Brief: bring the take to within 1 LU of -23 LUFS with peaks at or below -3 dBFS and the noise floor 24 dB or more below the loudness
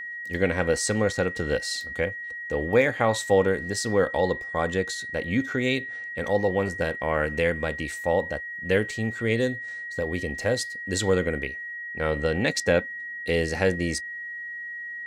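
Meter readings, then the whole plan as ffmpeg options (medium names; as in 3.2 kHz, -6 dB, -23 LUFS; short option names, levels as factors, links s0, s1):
steady tone 1.9 kHz; tone level -33 dBFS; loudness -26.0 LUFS; peak level -7.5 dBFS; loudness target -23.0 LUFS
-> -af "bandreject=f=1900:w=30"
-af "volume=1.41"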